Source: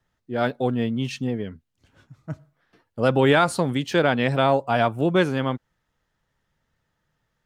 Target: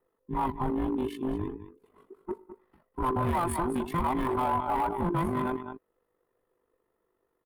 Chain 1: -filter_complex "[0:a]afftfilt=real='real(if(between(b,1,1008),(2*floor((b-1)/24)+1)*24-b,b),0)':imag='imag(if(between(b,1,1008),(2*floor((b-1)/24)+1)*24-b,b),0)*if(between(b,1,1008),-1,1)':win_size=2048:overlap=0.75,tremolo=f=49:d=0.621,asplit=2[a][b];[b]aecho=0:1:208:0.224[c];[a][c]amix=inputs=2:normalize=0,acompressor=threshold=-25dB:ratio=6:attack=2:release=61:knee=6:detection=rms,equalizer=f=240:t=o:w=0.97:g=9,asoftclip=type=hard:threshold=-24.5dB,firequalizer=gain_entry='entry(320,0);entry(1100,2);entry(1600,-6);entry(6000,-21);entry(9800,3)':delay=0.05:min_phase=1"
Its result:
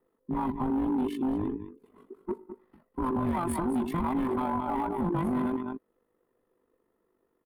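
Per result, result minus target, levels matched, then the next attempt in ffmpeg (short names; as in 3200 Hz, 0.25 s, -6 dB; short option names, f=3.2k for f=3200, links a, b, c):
compressor: peak gain reduction +7.5 dB; 250 Hz band +3.5 dB
-filter_complex "[0:a]afftfilt=real='real(if(between(b,1,1008),(2*floor((b-1)/24)+1)*24-b,b),0)':imag='imag(if(between(b,1,1008),(2*floor((b-1)/24)+1)*24-b,b),0)*if(between(b,1,1008),-1,1)':win_size=2048:overlap=0.75,tremolo=f=49:d=0.621,asplit=2[a][b];[b]aecho=0:1:208:0.224[c];[a][c]amix=inputs=2:normalize=0,acompressor=threshold=-16dB:ratio=6:attack=2:release=61:knee=6:detection=rms,equalizer=f=240:t=o:w=0.97:g=9,asoftclip=type=hard:threshold=-24.5dB,firequalizer=gain_entry='entry(320,0);entry(1100,2);entry(1600,-6);entry(6000,-21);entry(9800,3)':delay=0.05:min_phase=1"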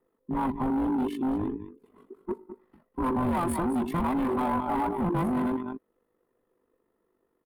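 250 Hz band +3.5 dB
-filter_complex "[0:a]afftfilt=real='real(if(between(b,1,1008),(2*floor((b-1)/24)+1)*24-b,b),0)':imag='imag(if(between(b,1,1008),(2*floor((b-1)/24)+1)*24-b,b),0)*if(between(b,1,1008),-1,1)':win_size=2048:overlap=0.75,tremolo=f=49:d=0.621,asplit=2[a][b];[b]aecho=0:1:208:0.224[c];[a][c]amix=inputs=2:normalize=0,acompressor=threshold=-16dB:ratio=6:attack=2:release=61:knee=6:detection=rms,asoftclip=type=hard:threshold=-24.5dB,firequalizer=gain_entry='entry(320,0);entry(1100,2);entry(1600,-6);entry(6000,-21);entry(9800,3)':delay=0.05:min_phase=1"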